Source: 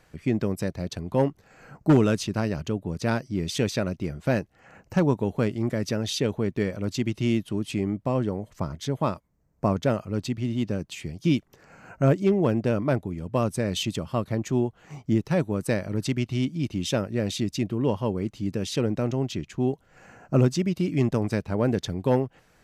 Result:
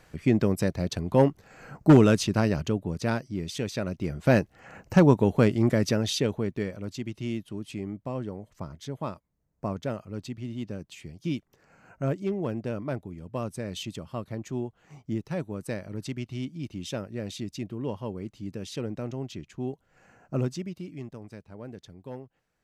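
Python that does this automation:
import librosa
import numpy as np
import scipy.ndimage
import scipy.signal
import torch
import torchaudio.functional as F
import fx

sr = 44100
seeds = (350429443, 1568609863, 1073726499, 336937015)

y = fx.gain(x, sr, db=fx.line((2.53, 2.5), (3.64, -6.5), (4.36, 4.0), (5.75, 4.0), (6.96, -8.0), (20.51, -8.0), (21.11, -18.0)))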